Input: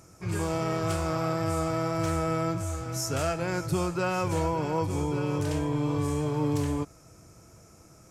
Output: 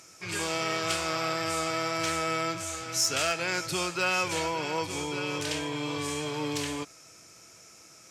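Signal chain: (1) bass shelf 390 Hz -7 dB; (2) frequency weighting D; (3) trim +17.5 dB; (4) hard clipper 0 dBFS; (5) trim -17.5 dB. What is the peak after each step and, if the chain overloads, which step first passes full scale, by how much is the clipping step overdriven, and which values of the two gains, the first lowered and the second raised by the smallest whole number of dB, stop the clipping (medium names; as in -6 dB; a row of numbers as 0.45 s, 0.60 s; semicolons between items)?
-17.5 dBFS, -13.0 dBFS, +4.5 dBFS, 0.0 dBFS, -17.5 dBFS; step 3, 4.5 dB; step 3 +12.5 dB, step 5 -12.5 dB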